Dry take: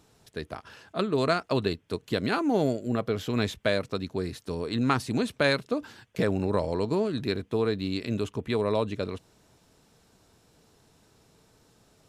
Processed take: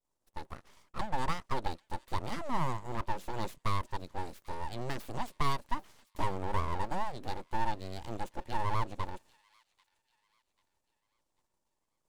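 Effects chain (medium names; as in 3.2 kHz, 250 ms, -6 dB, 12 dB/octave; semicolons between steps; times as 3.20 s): graphic EQ 250/500/1000/2000/4000/8000 Hz -8/+12/-8/-5/-5/+4 dB; full-wave rectifier; expander -49 dBFS; on a send: feedback echo behind a high-pass 791 ms, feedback 37%, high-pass 2.5 kHz, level -19 dB; on the sum: trim -7 dB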